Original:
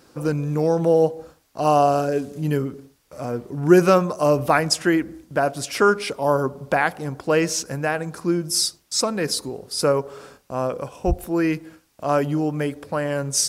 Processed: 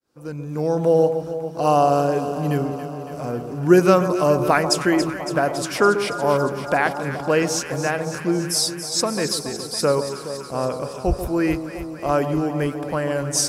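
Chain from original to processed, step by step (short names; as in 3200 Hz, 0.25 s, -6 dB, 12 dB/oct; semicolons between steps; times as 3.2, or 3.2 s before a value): opening faded in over 0.86 s; echo with dull and thin repeats by turns 0.14 s, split 1100 Hz, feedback 84%, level -9 dB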